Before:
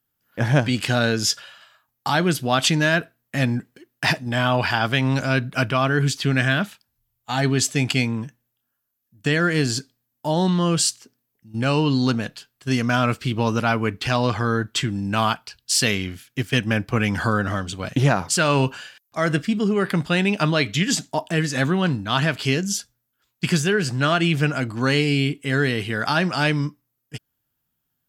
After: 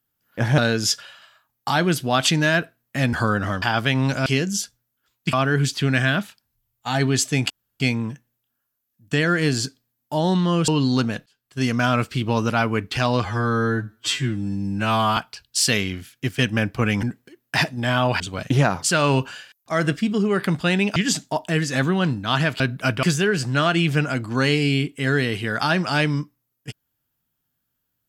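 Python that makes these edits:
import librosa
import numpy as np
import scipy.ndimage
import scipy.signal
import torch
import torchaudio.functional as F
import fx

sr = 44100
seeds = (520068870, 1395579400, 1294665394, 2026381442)

y = fx.edit(x, sr, fx.cut(start_s=0.58, length_s=0.39),
    fx.swap(start_s=3.52, length_s=1.17, other_s=17.17, other_length_s=0.49),
    fx.swap(start_s=5.33, length_s=0.43, other_s=22.42, other_length_s=1.07),
    fx.insert_room_tone(at_s=7.93, length_s=0.3),
    fx.cut(start_s=10.81, length_s=0.97),
    fx.fade_in_span(start_s=12.36, length_s=0.41),
    fx.stretch_span(start_s=14.35, length_s=0.96, factor=2.0),
    fx.cut(start_s=20.42, length_s=0.36), tone=tone)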